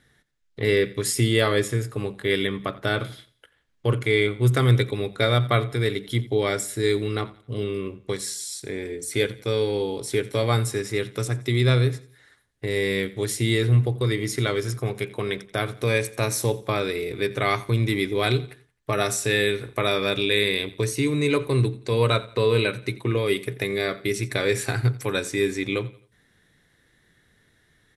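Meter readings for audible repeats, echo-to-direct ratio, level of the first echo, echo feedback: 2, −18.5 dB, −19.0 dB, 36%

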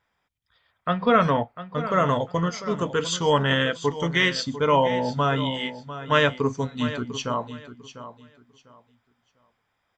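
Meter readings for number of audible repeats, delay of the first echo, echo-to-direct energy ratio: 2, 698 ms, −13.0 dB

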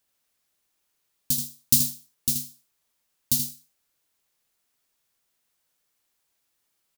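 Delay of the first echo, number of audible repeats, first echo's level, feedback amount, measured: 79 ms, 1, −7.5 dB, repeats not evenly spaced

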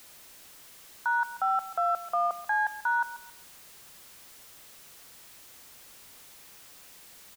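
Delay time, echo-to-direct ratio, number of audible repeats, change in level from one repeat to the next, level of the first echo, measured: 137 ms, −14.5 dB, 2, −11.0 dB, −15.0 dB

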